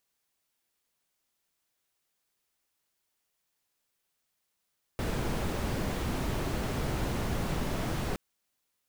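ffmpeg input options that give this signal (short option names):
-f lavfi -i "anoisesrc=c=brown:a=0.132:d=3.17:r=44100:seed=1"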